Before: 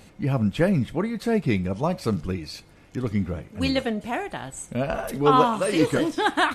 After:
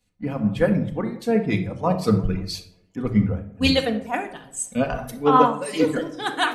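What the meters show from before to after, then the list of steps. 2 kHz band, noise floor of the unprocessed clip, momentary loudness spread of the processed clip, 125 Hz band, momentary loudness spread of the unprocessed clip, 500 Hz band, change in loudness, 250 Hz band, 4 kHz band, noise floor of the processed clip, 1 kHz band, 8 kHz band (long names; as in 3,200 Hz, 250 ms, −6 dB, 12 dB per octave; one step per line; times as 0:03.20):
+0.5 dB, −52 dBFS, 11 LU, +1.0 dB, 12 LU, +1.5 dB, +1.5 dB, +2.0 dB, +3.5 dB, −59 dBFS, +1.5 dB, +4.5 dB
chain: reverb reduction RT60 1.6 s
speech leveller within 3 dB 0.5 s
on a send: tape delay 178 ms, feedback 87%, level −17.5 dB, low-pass 1,300 Hz
on the sum: rectangular room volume 2,200 cubic metres, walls furnished, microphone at 1.9 metres
multiband upward and downward expander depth 100%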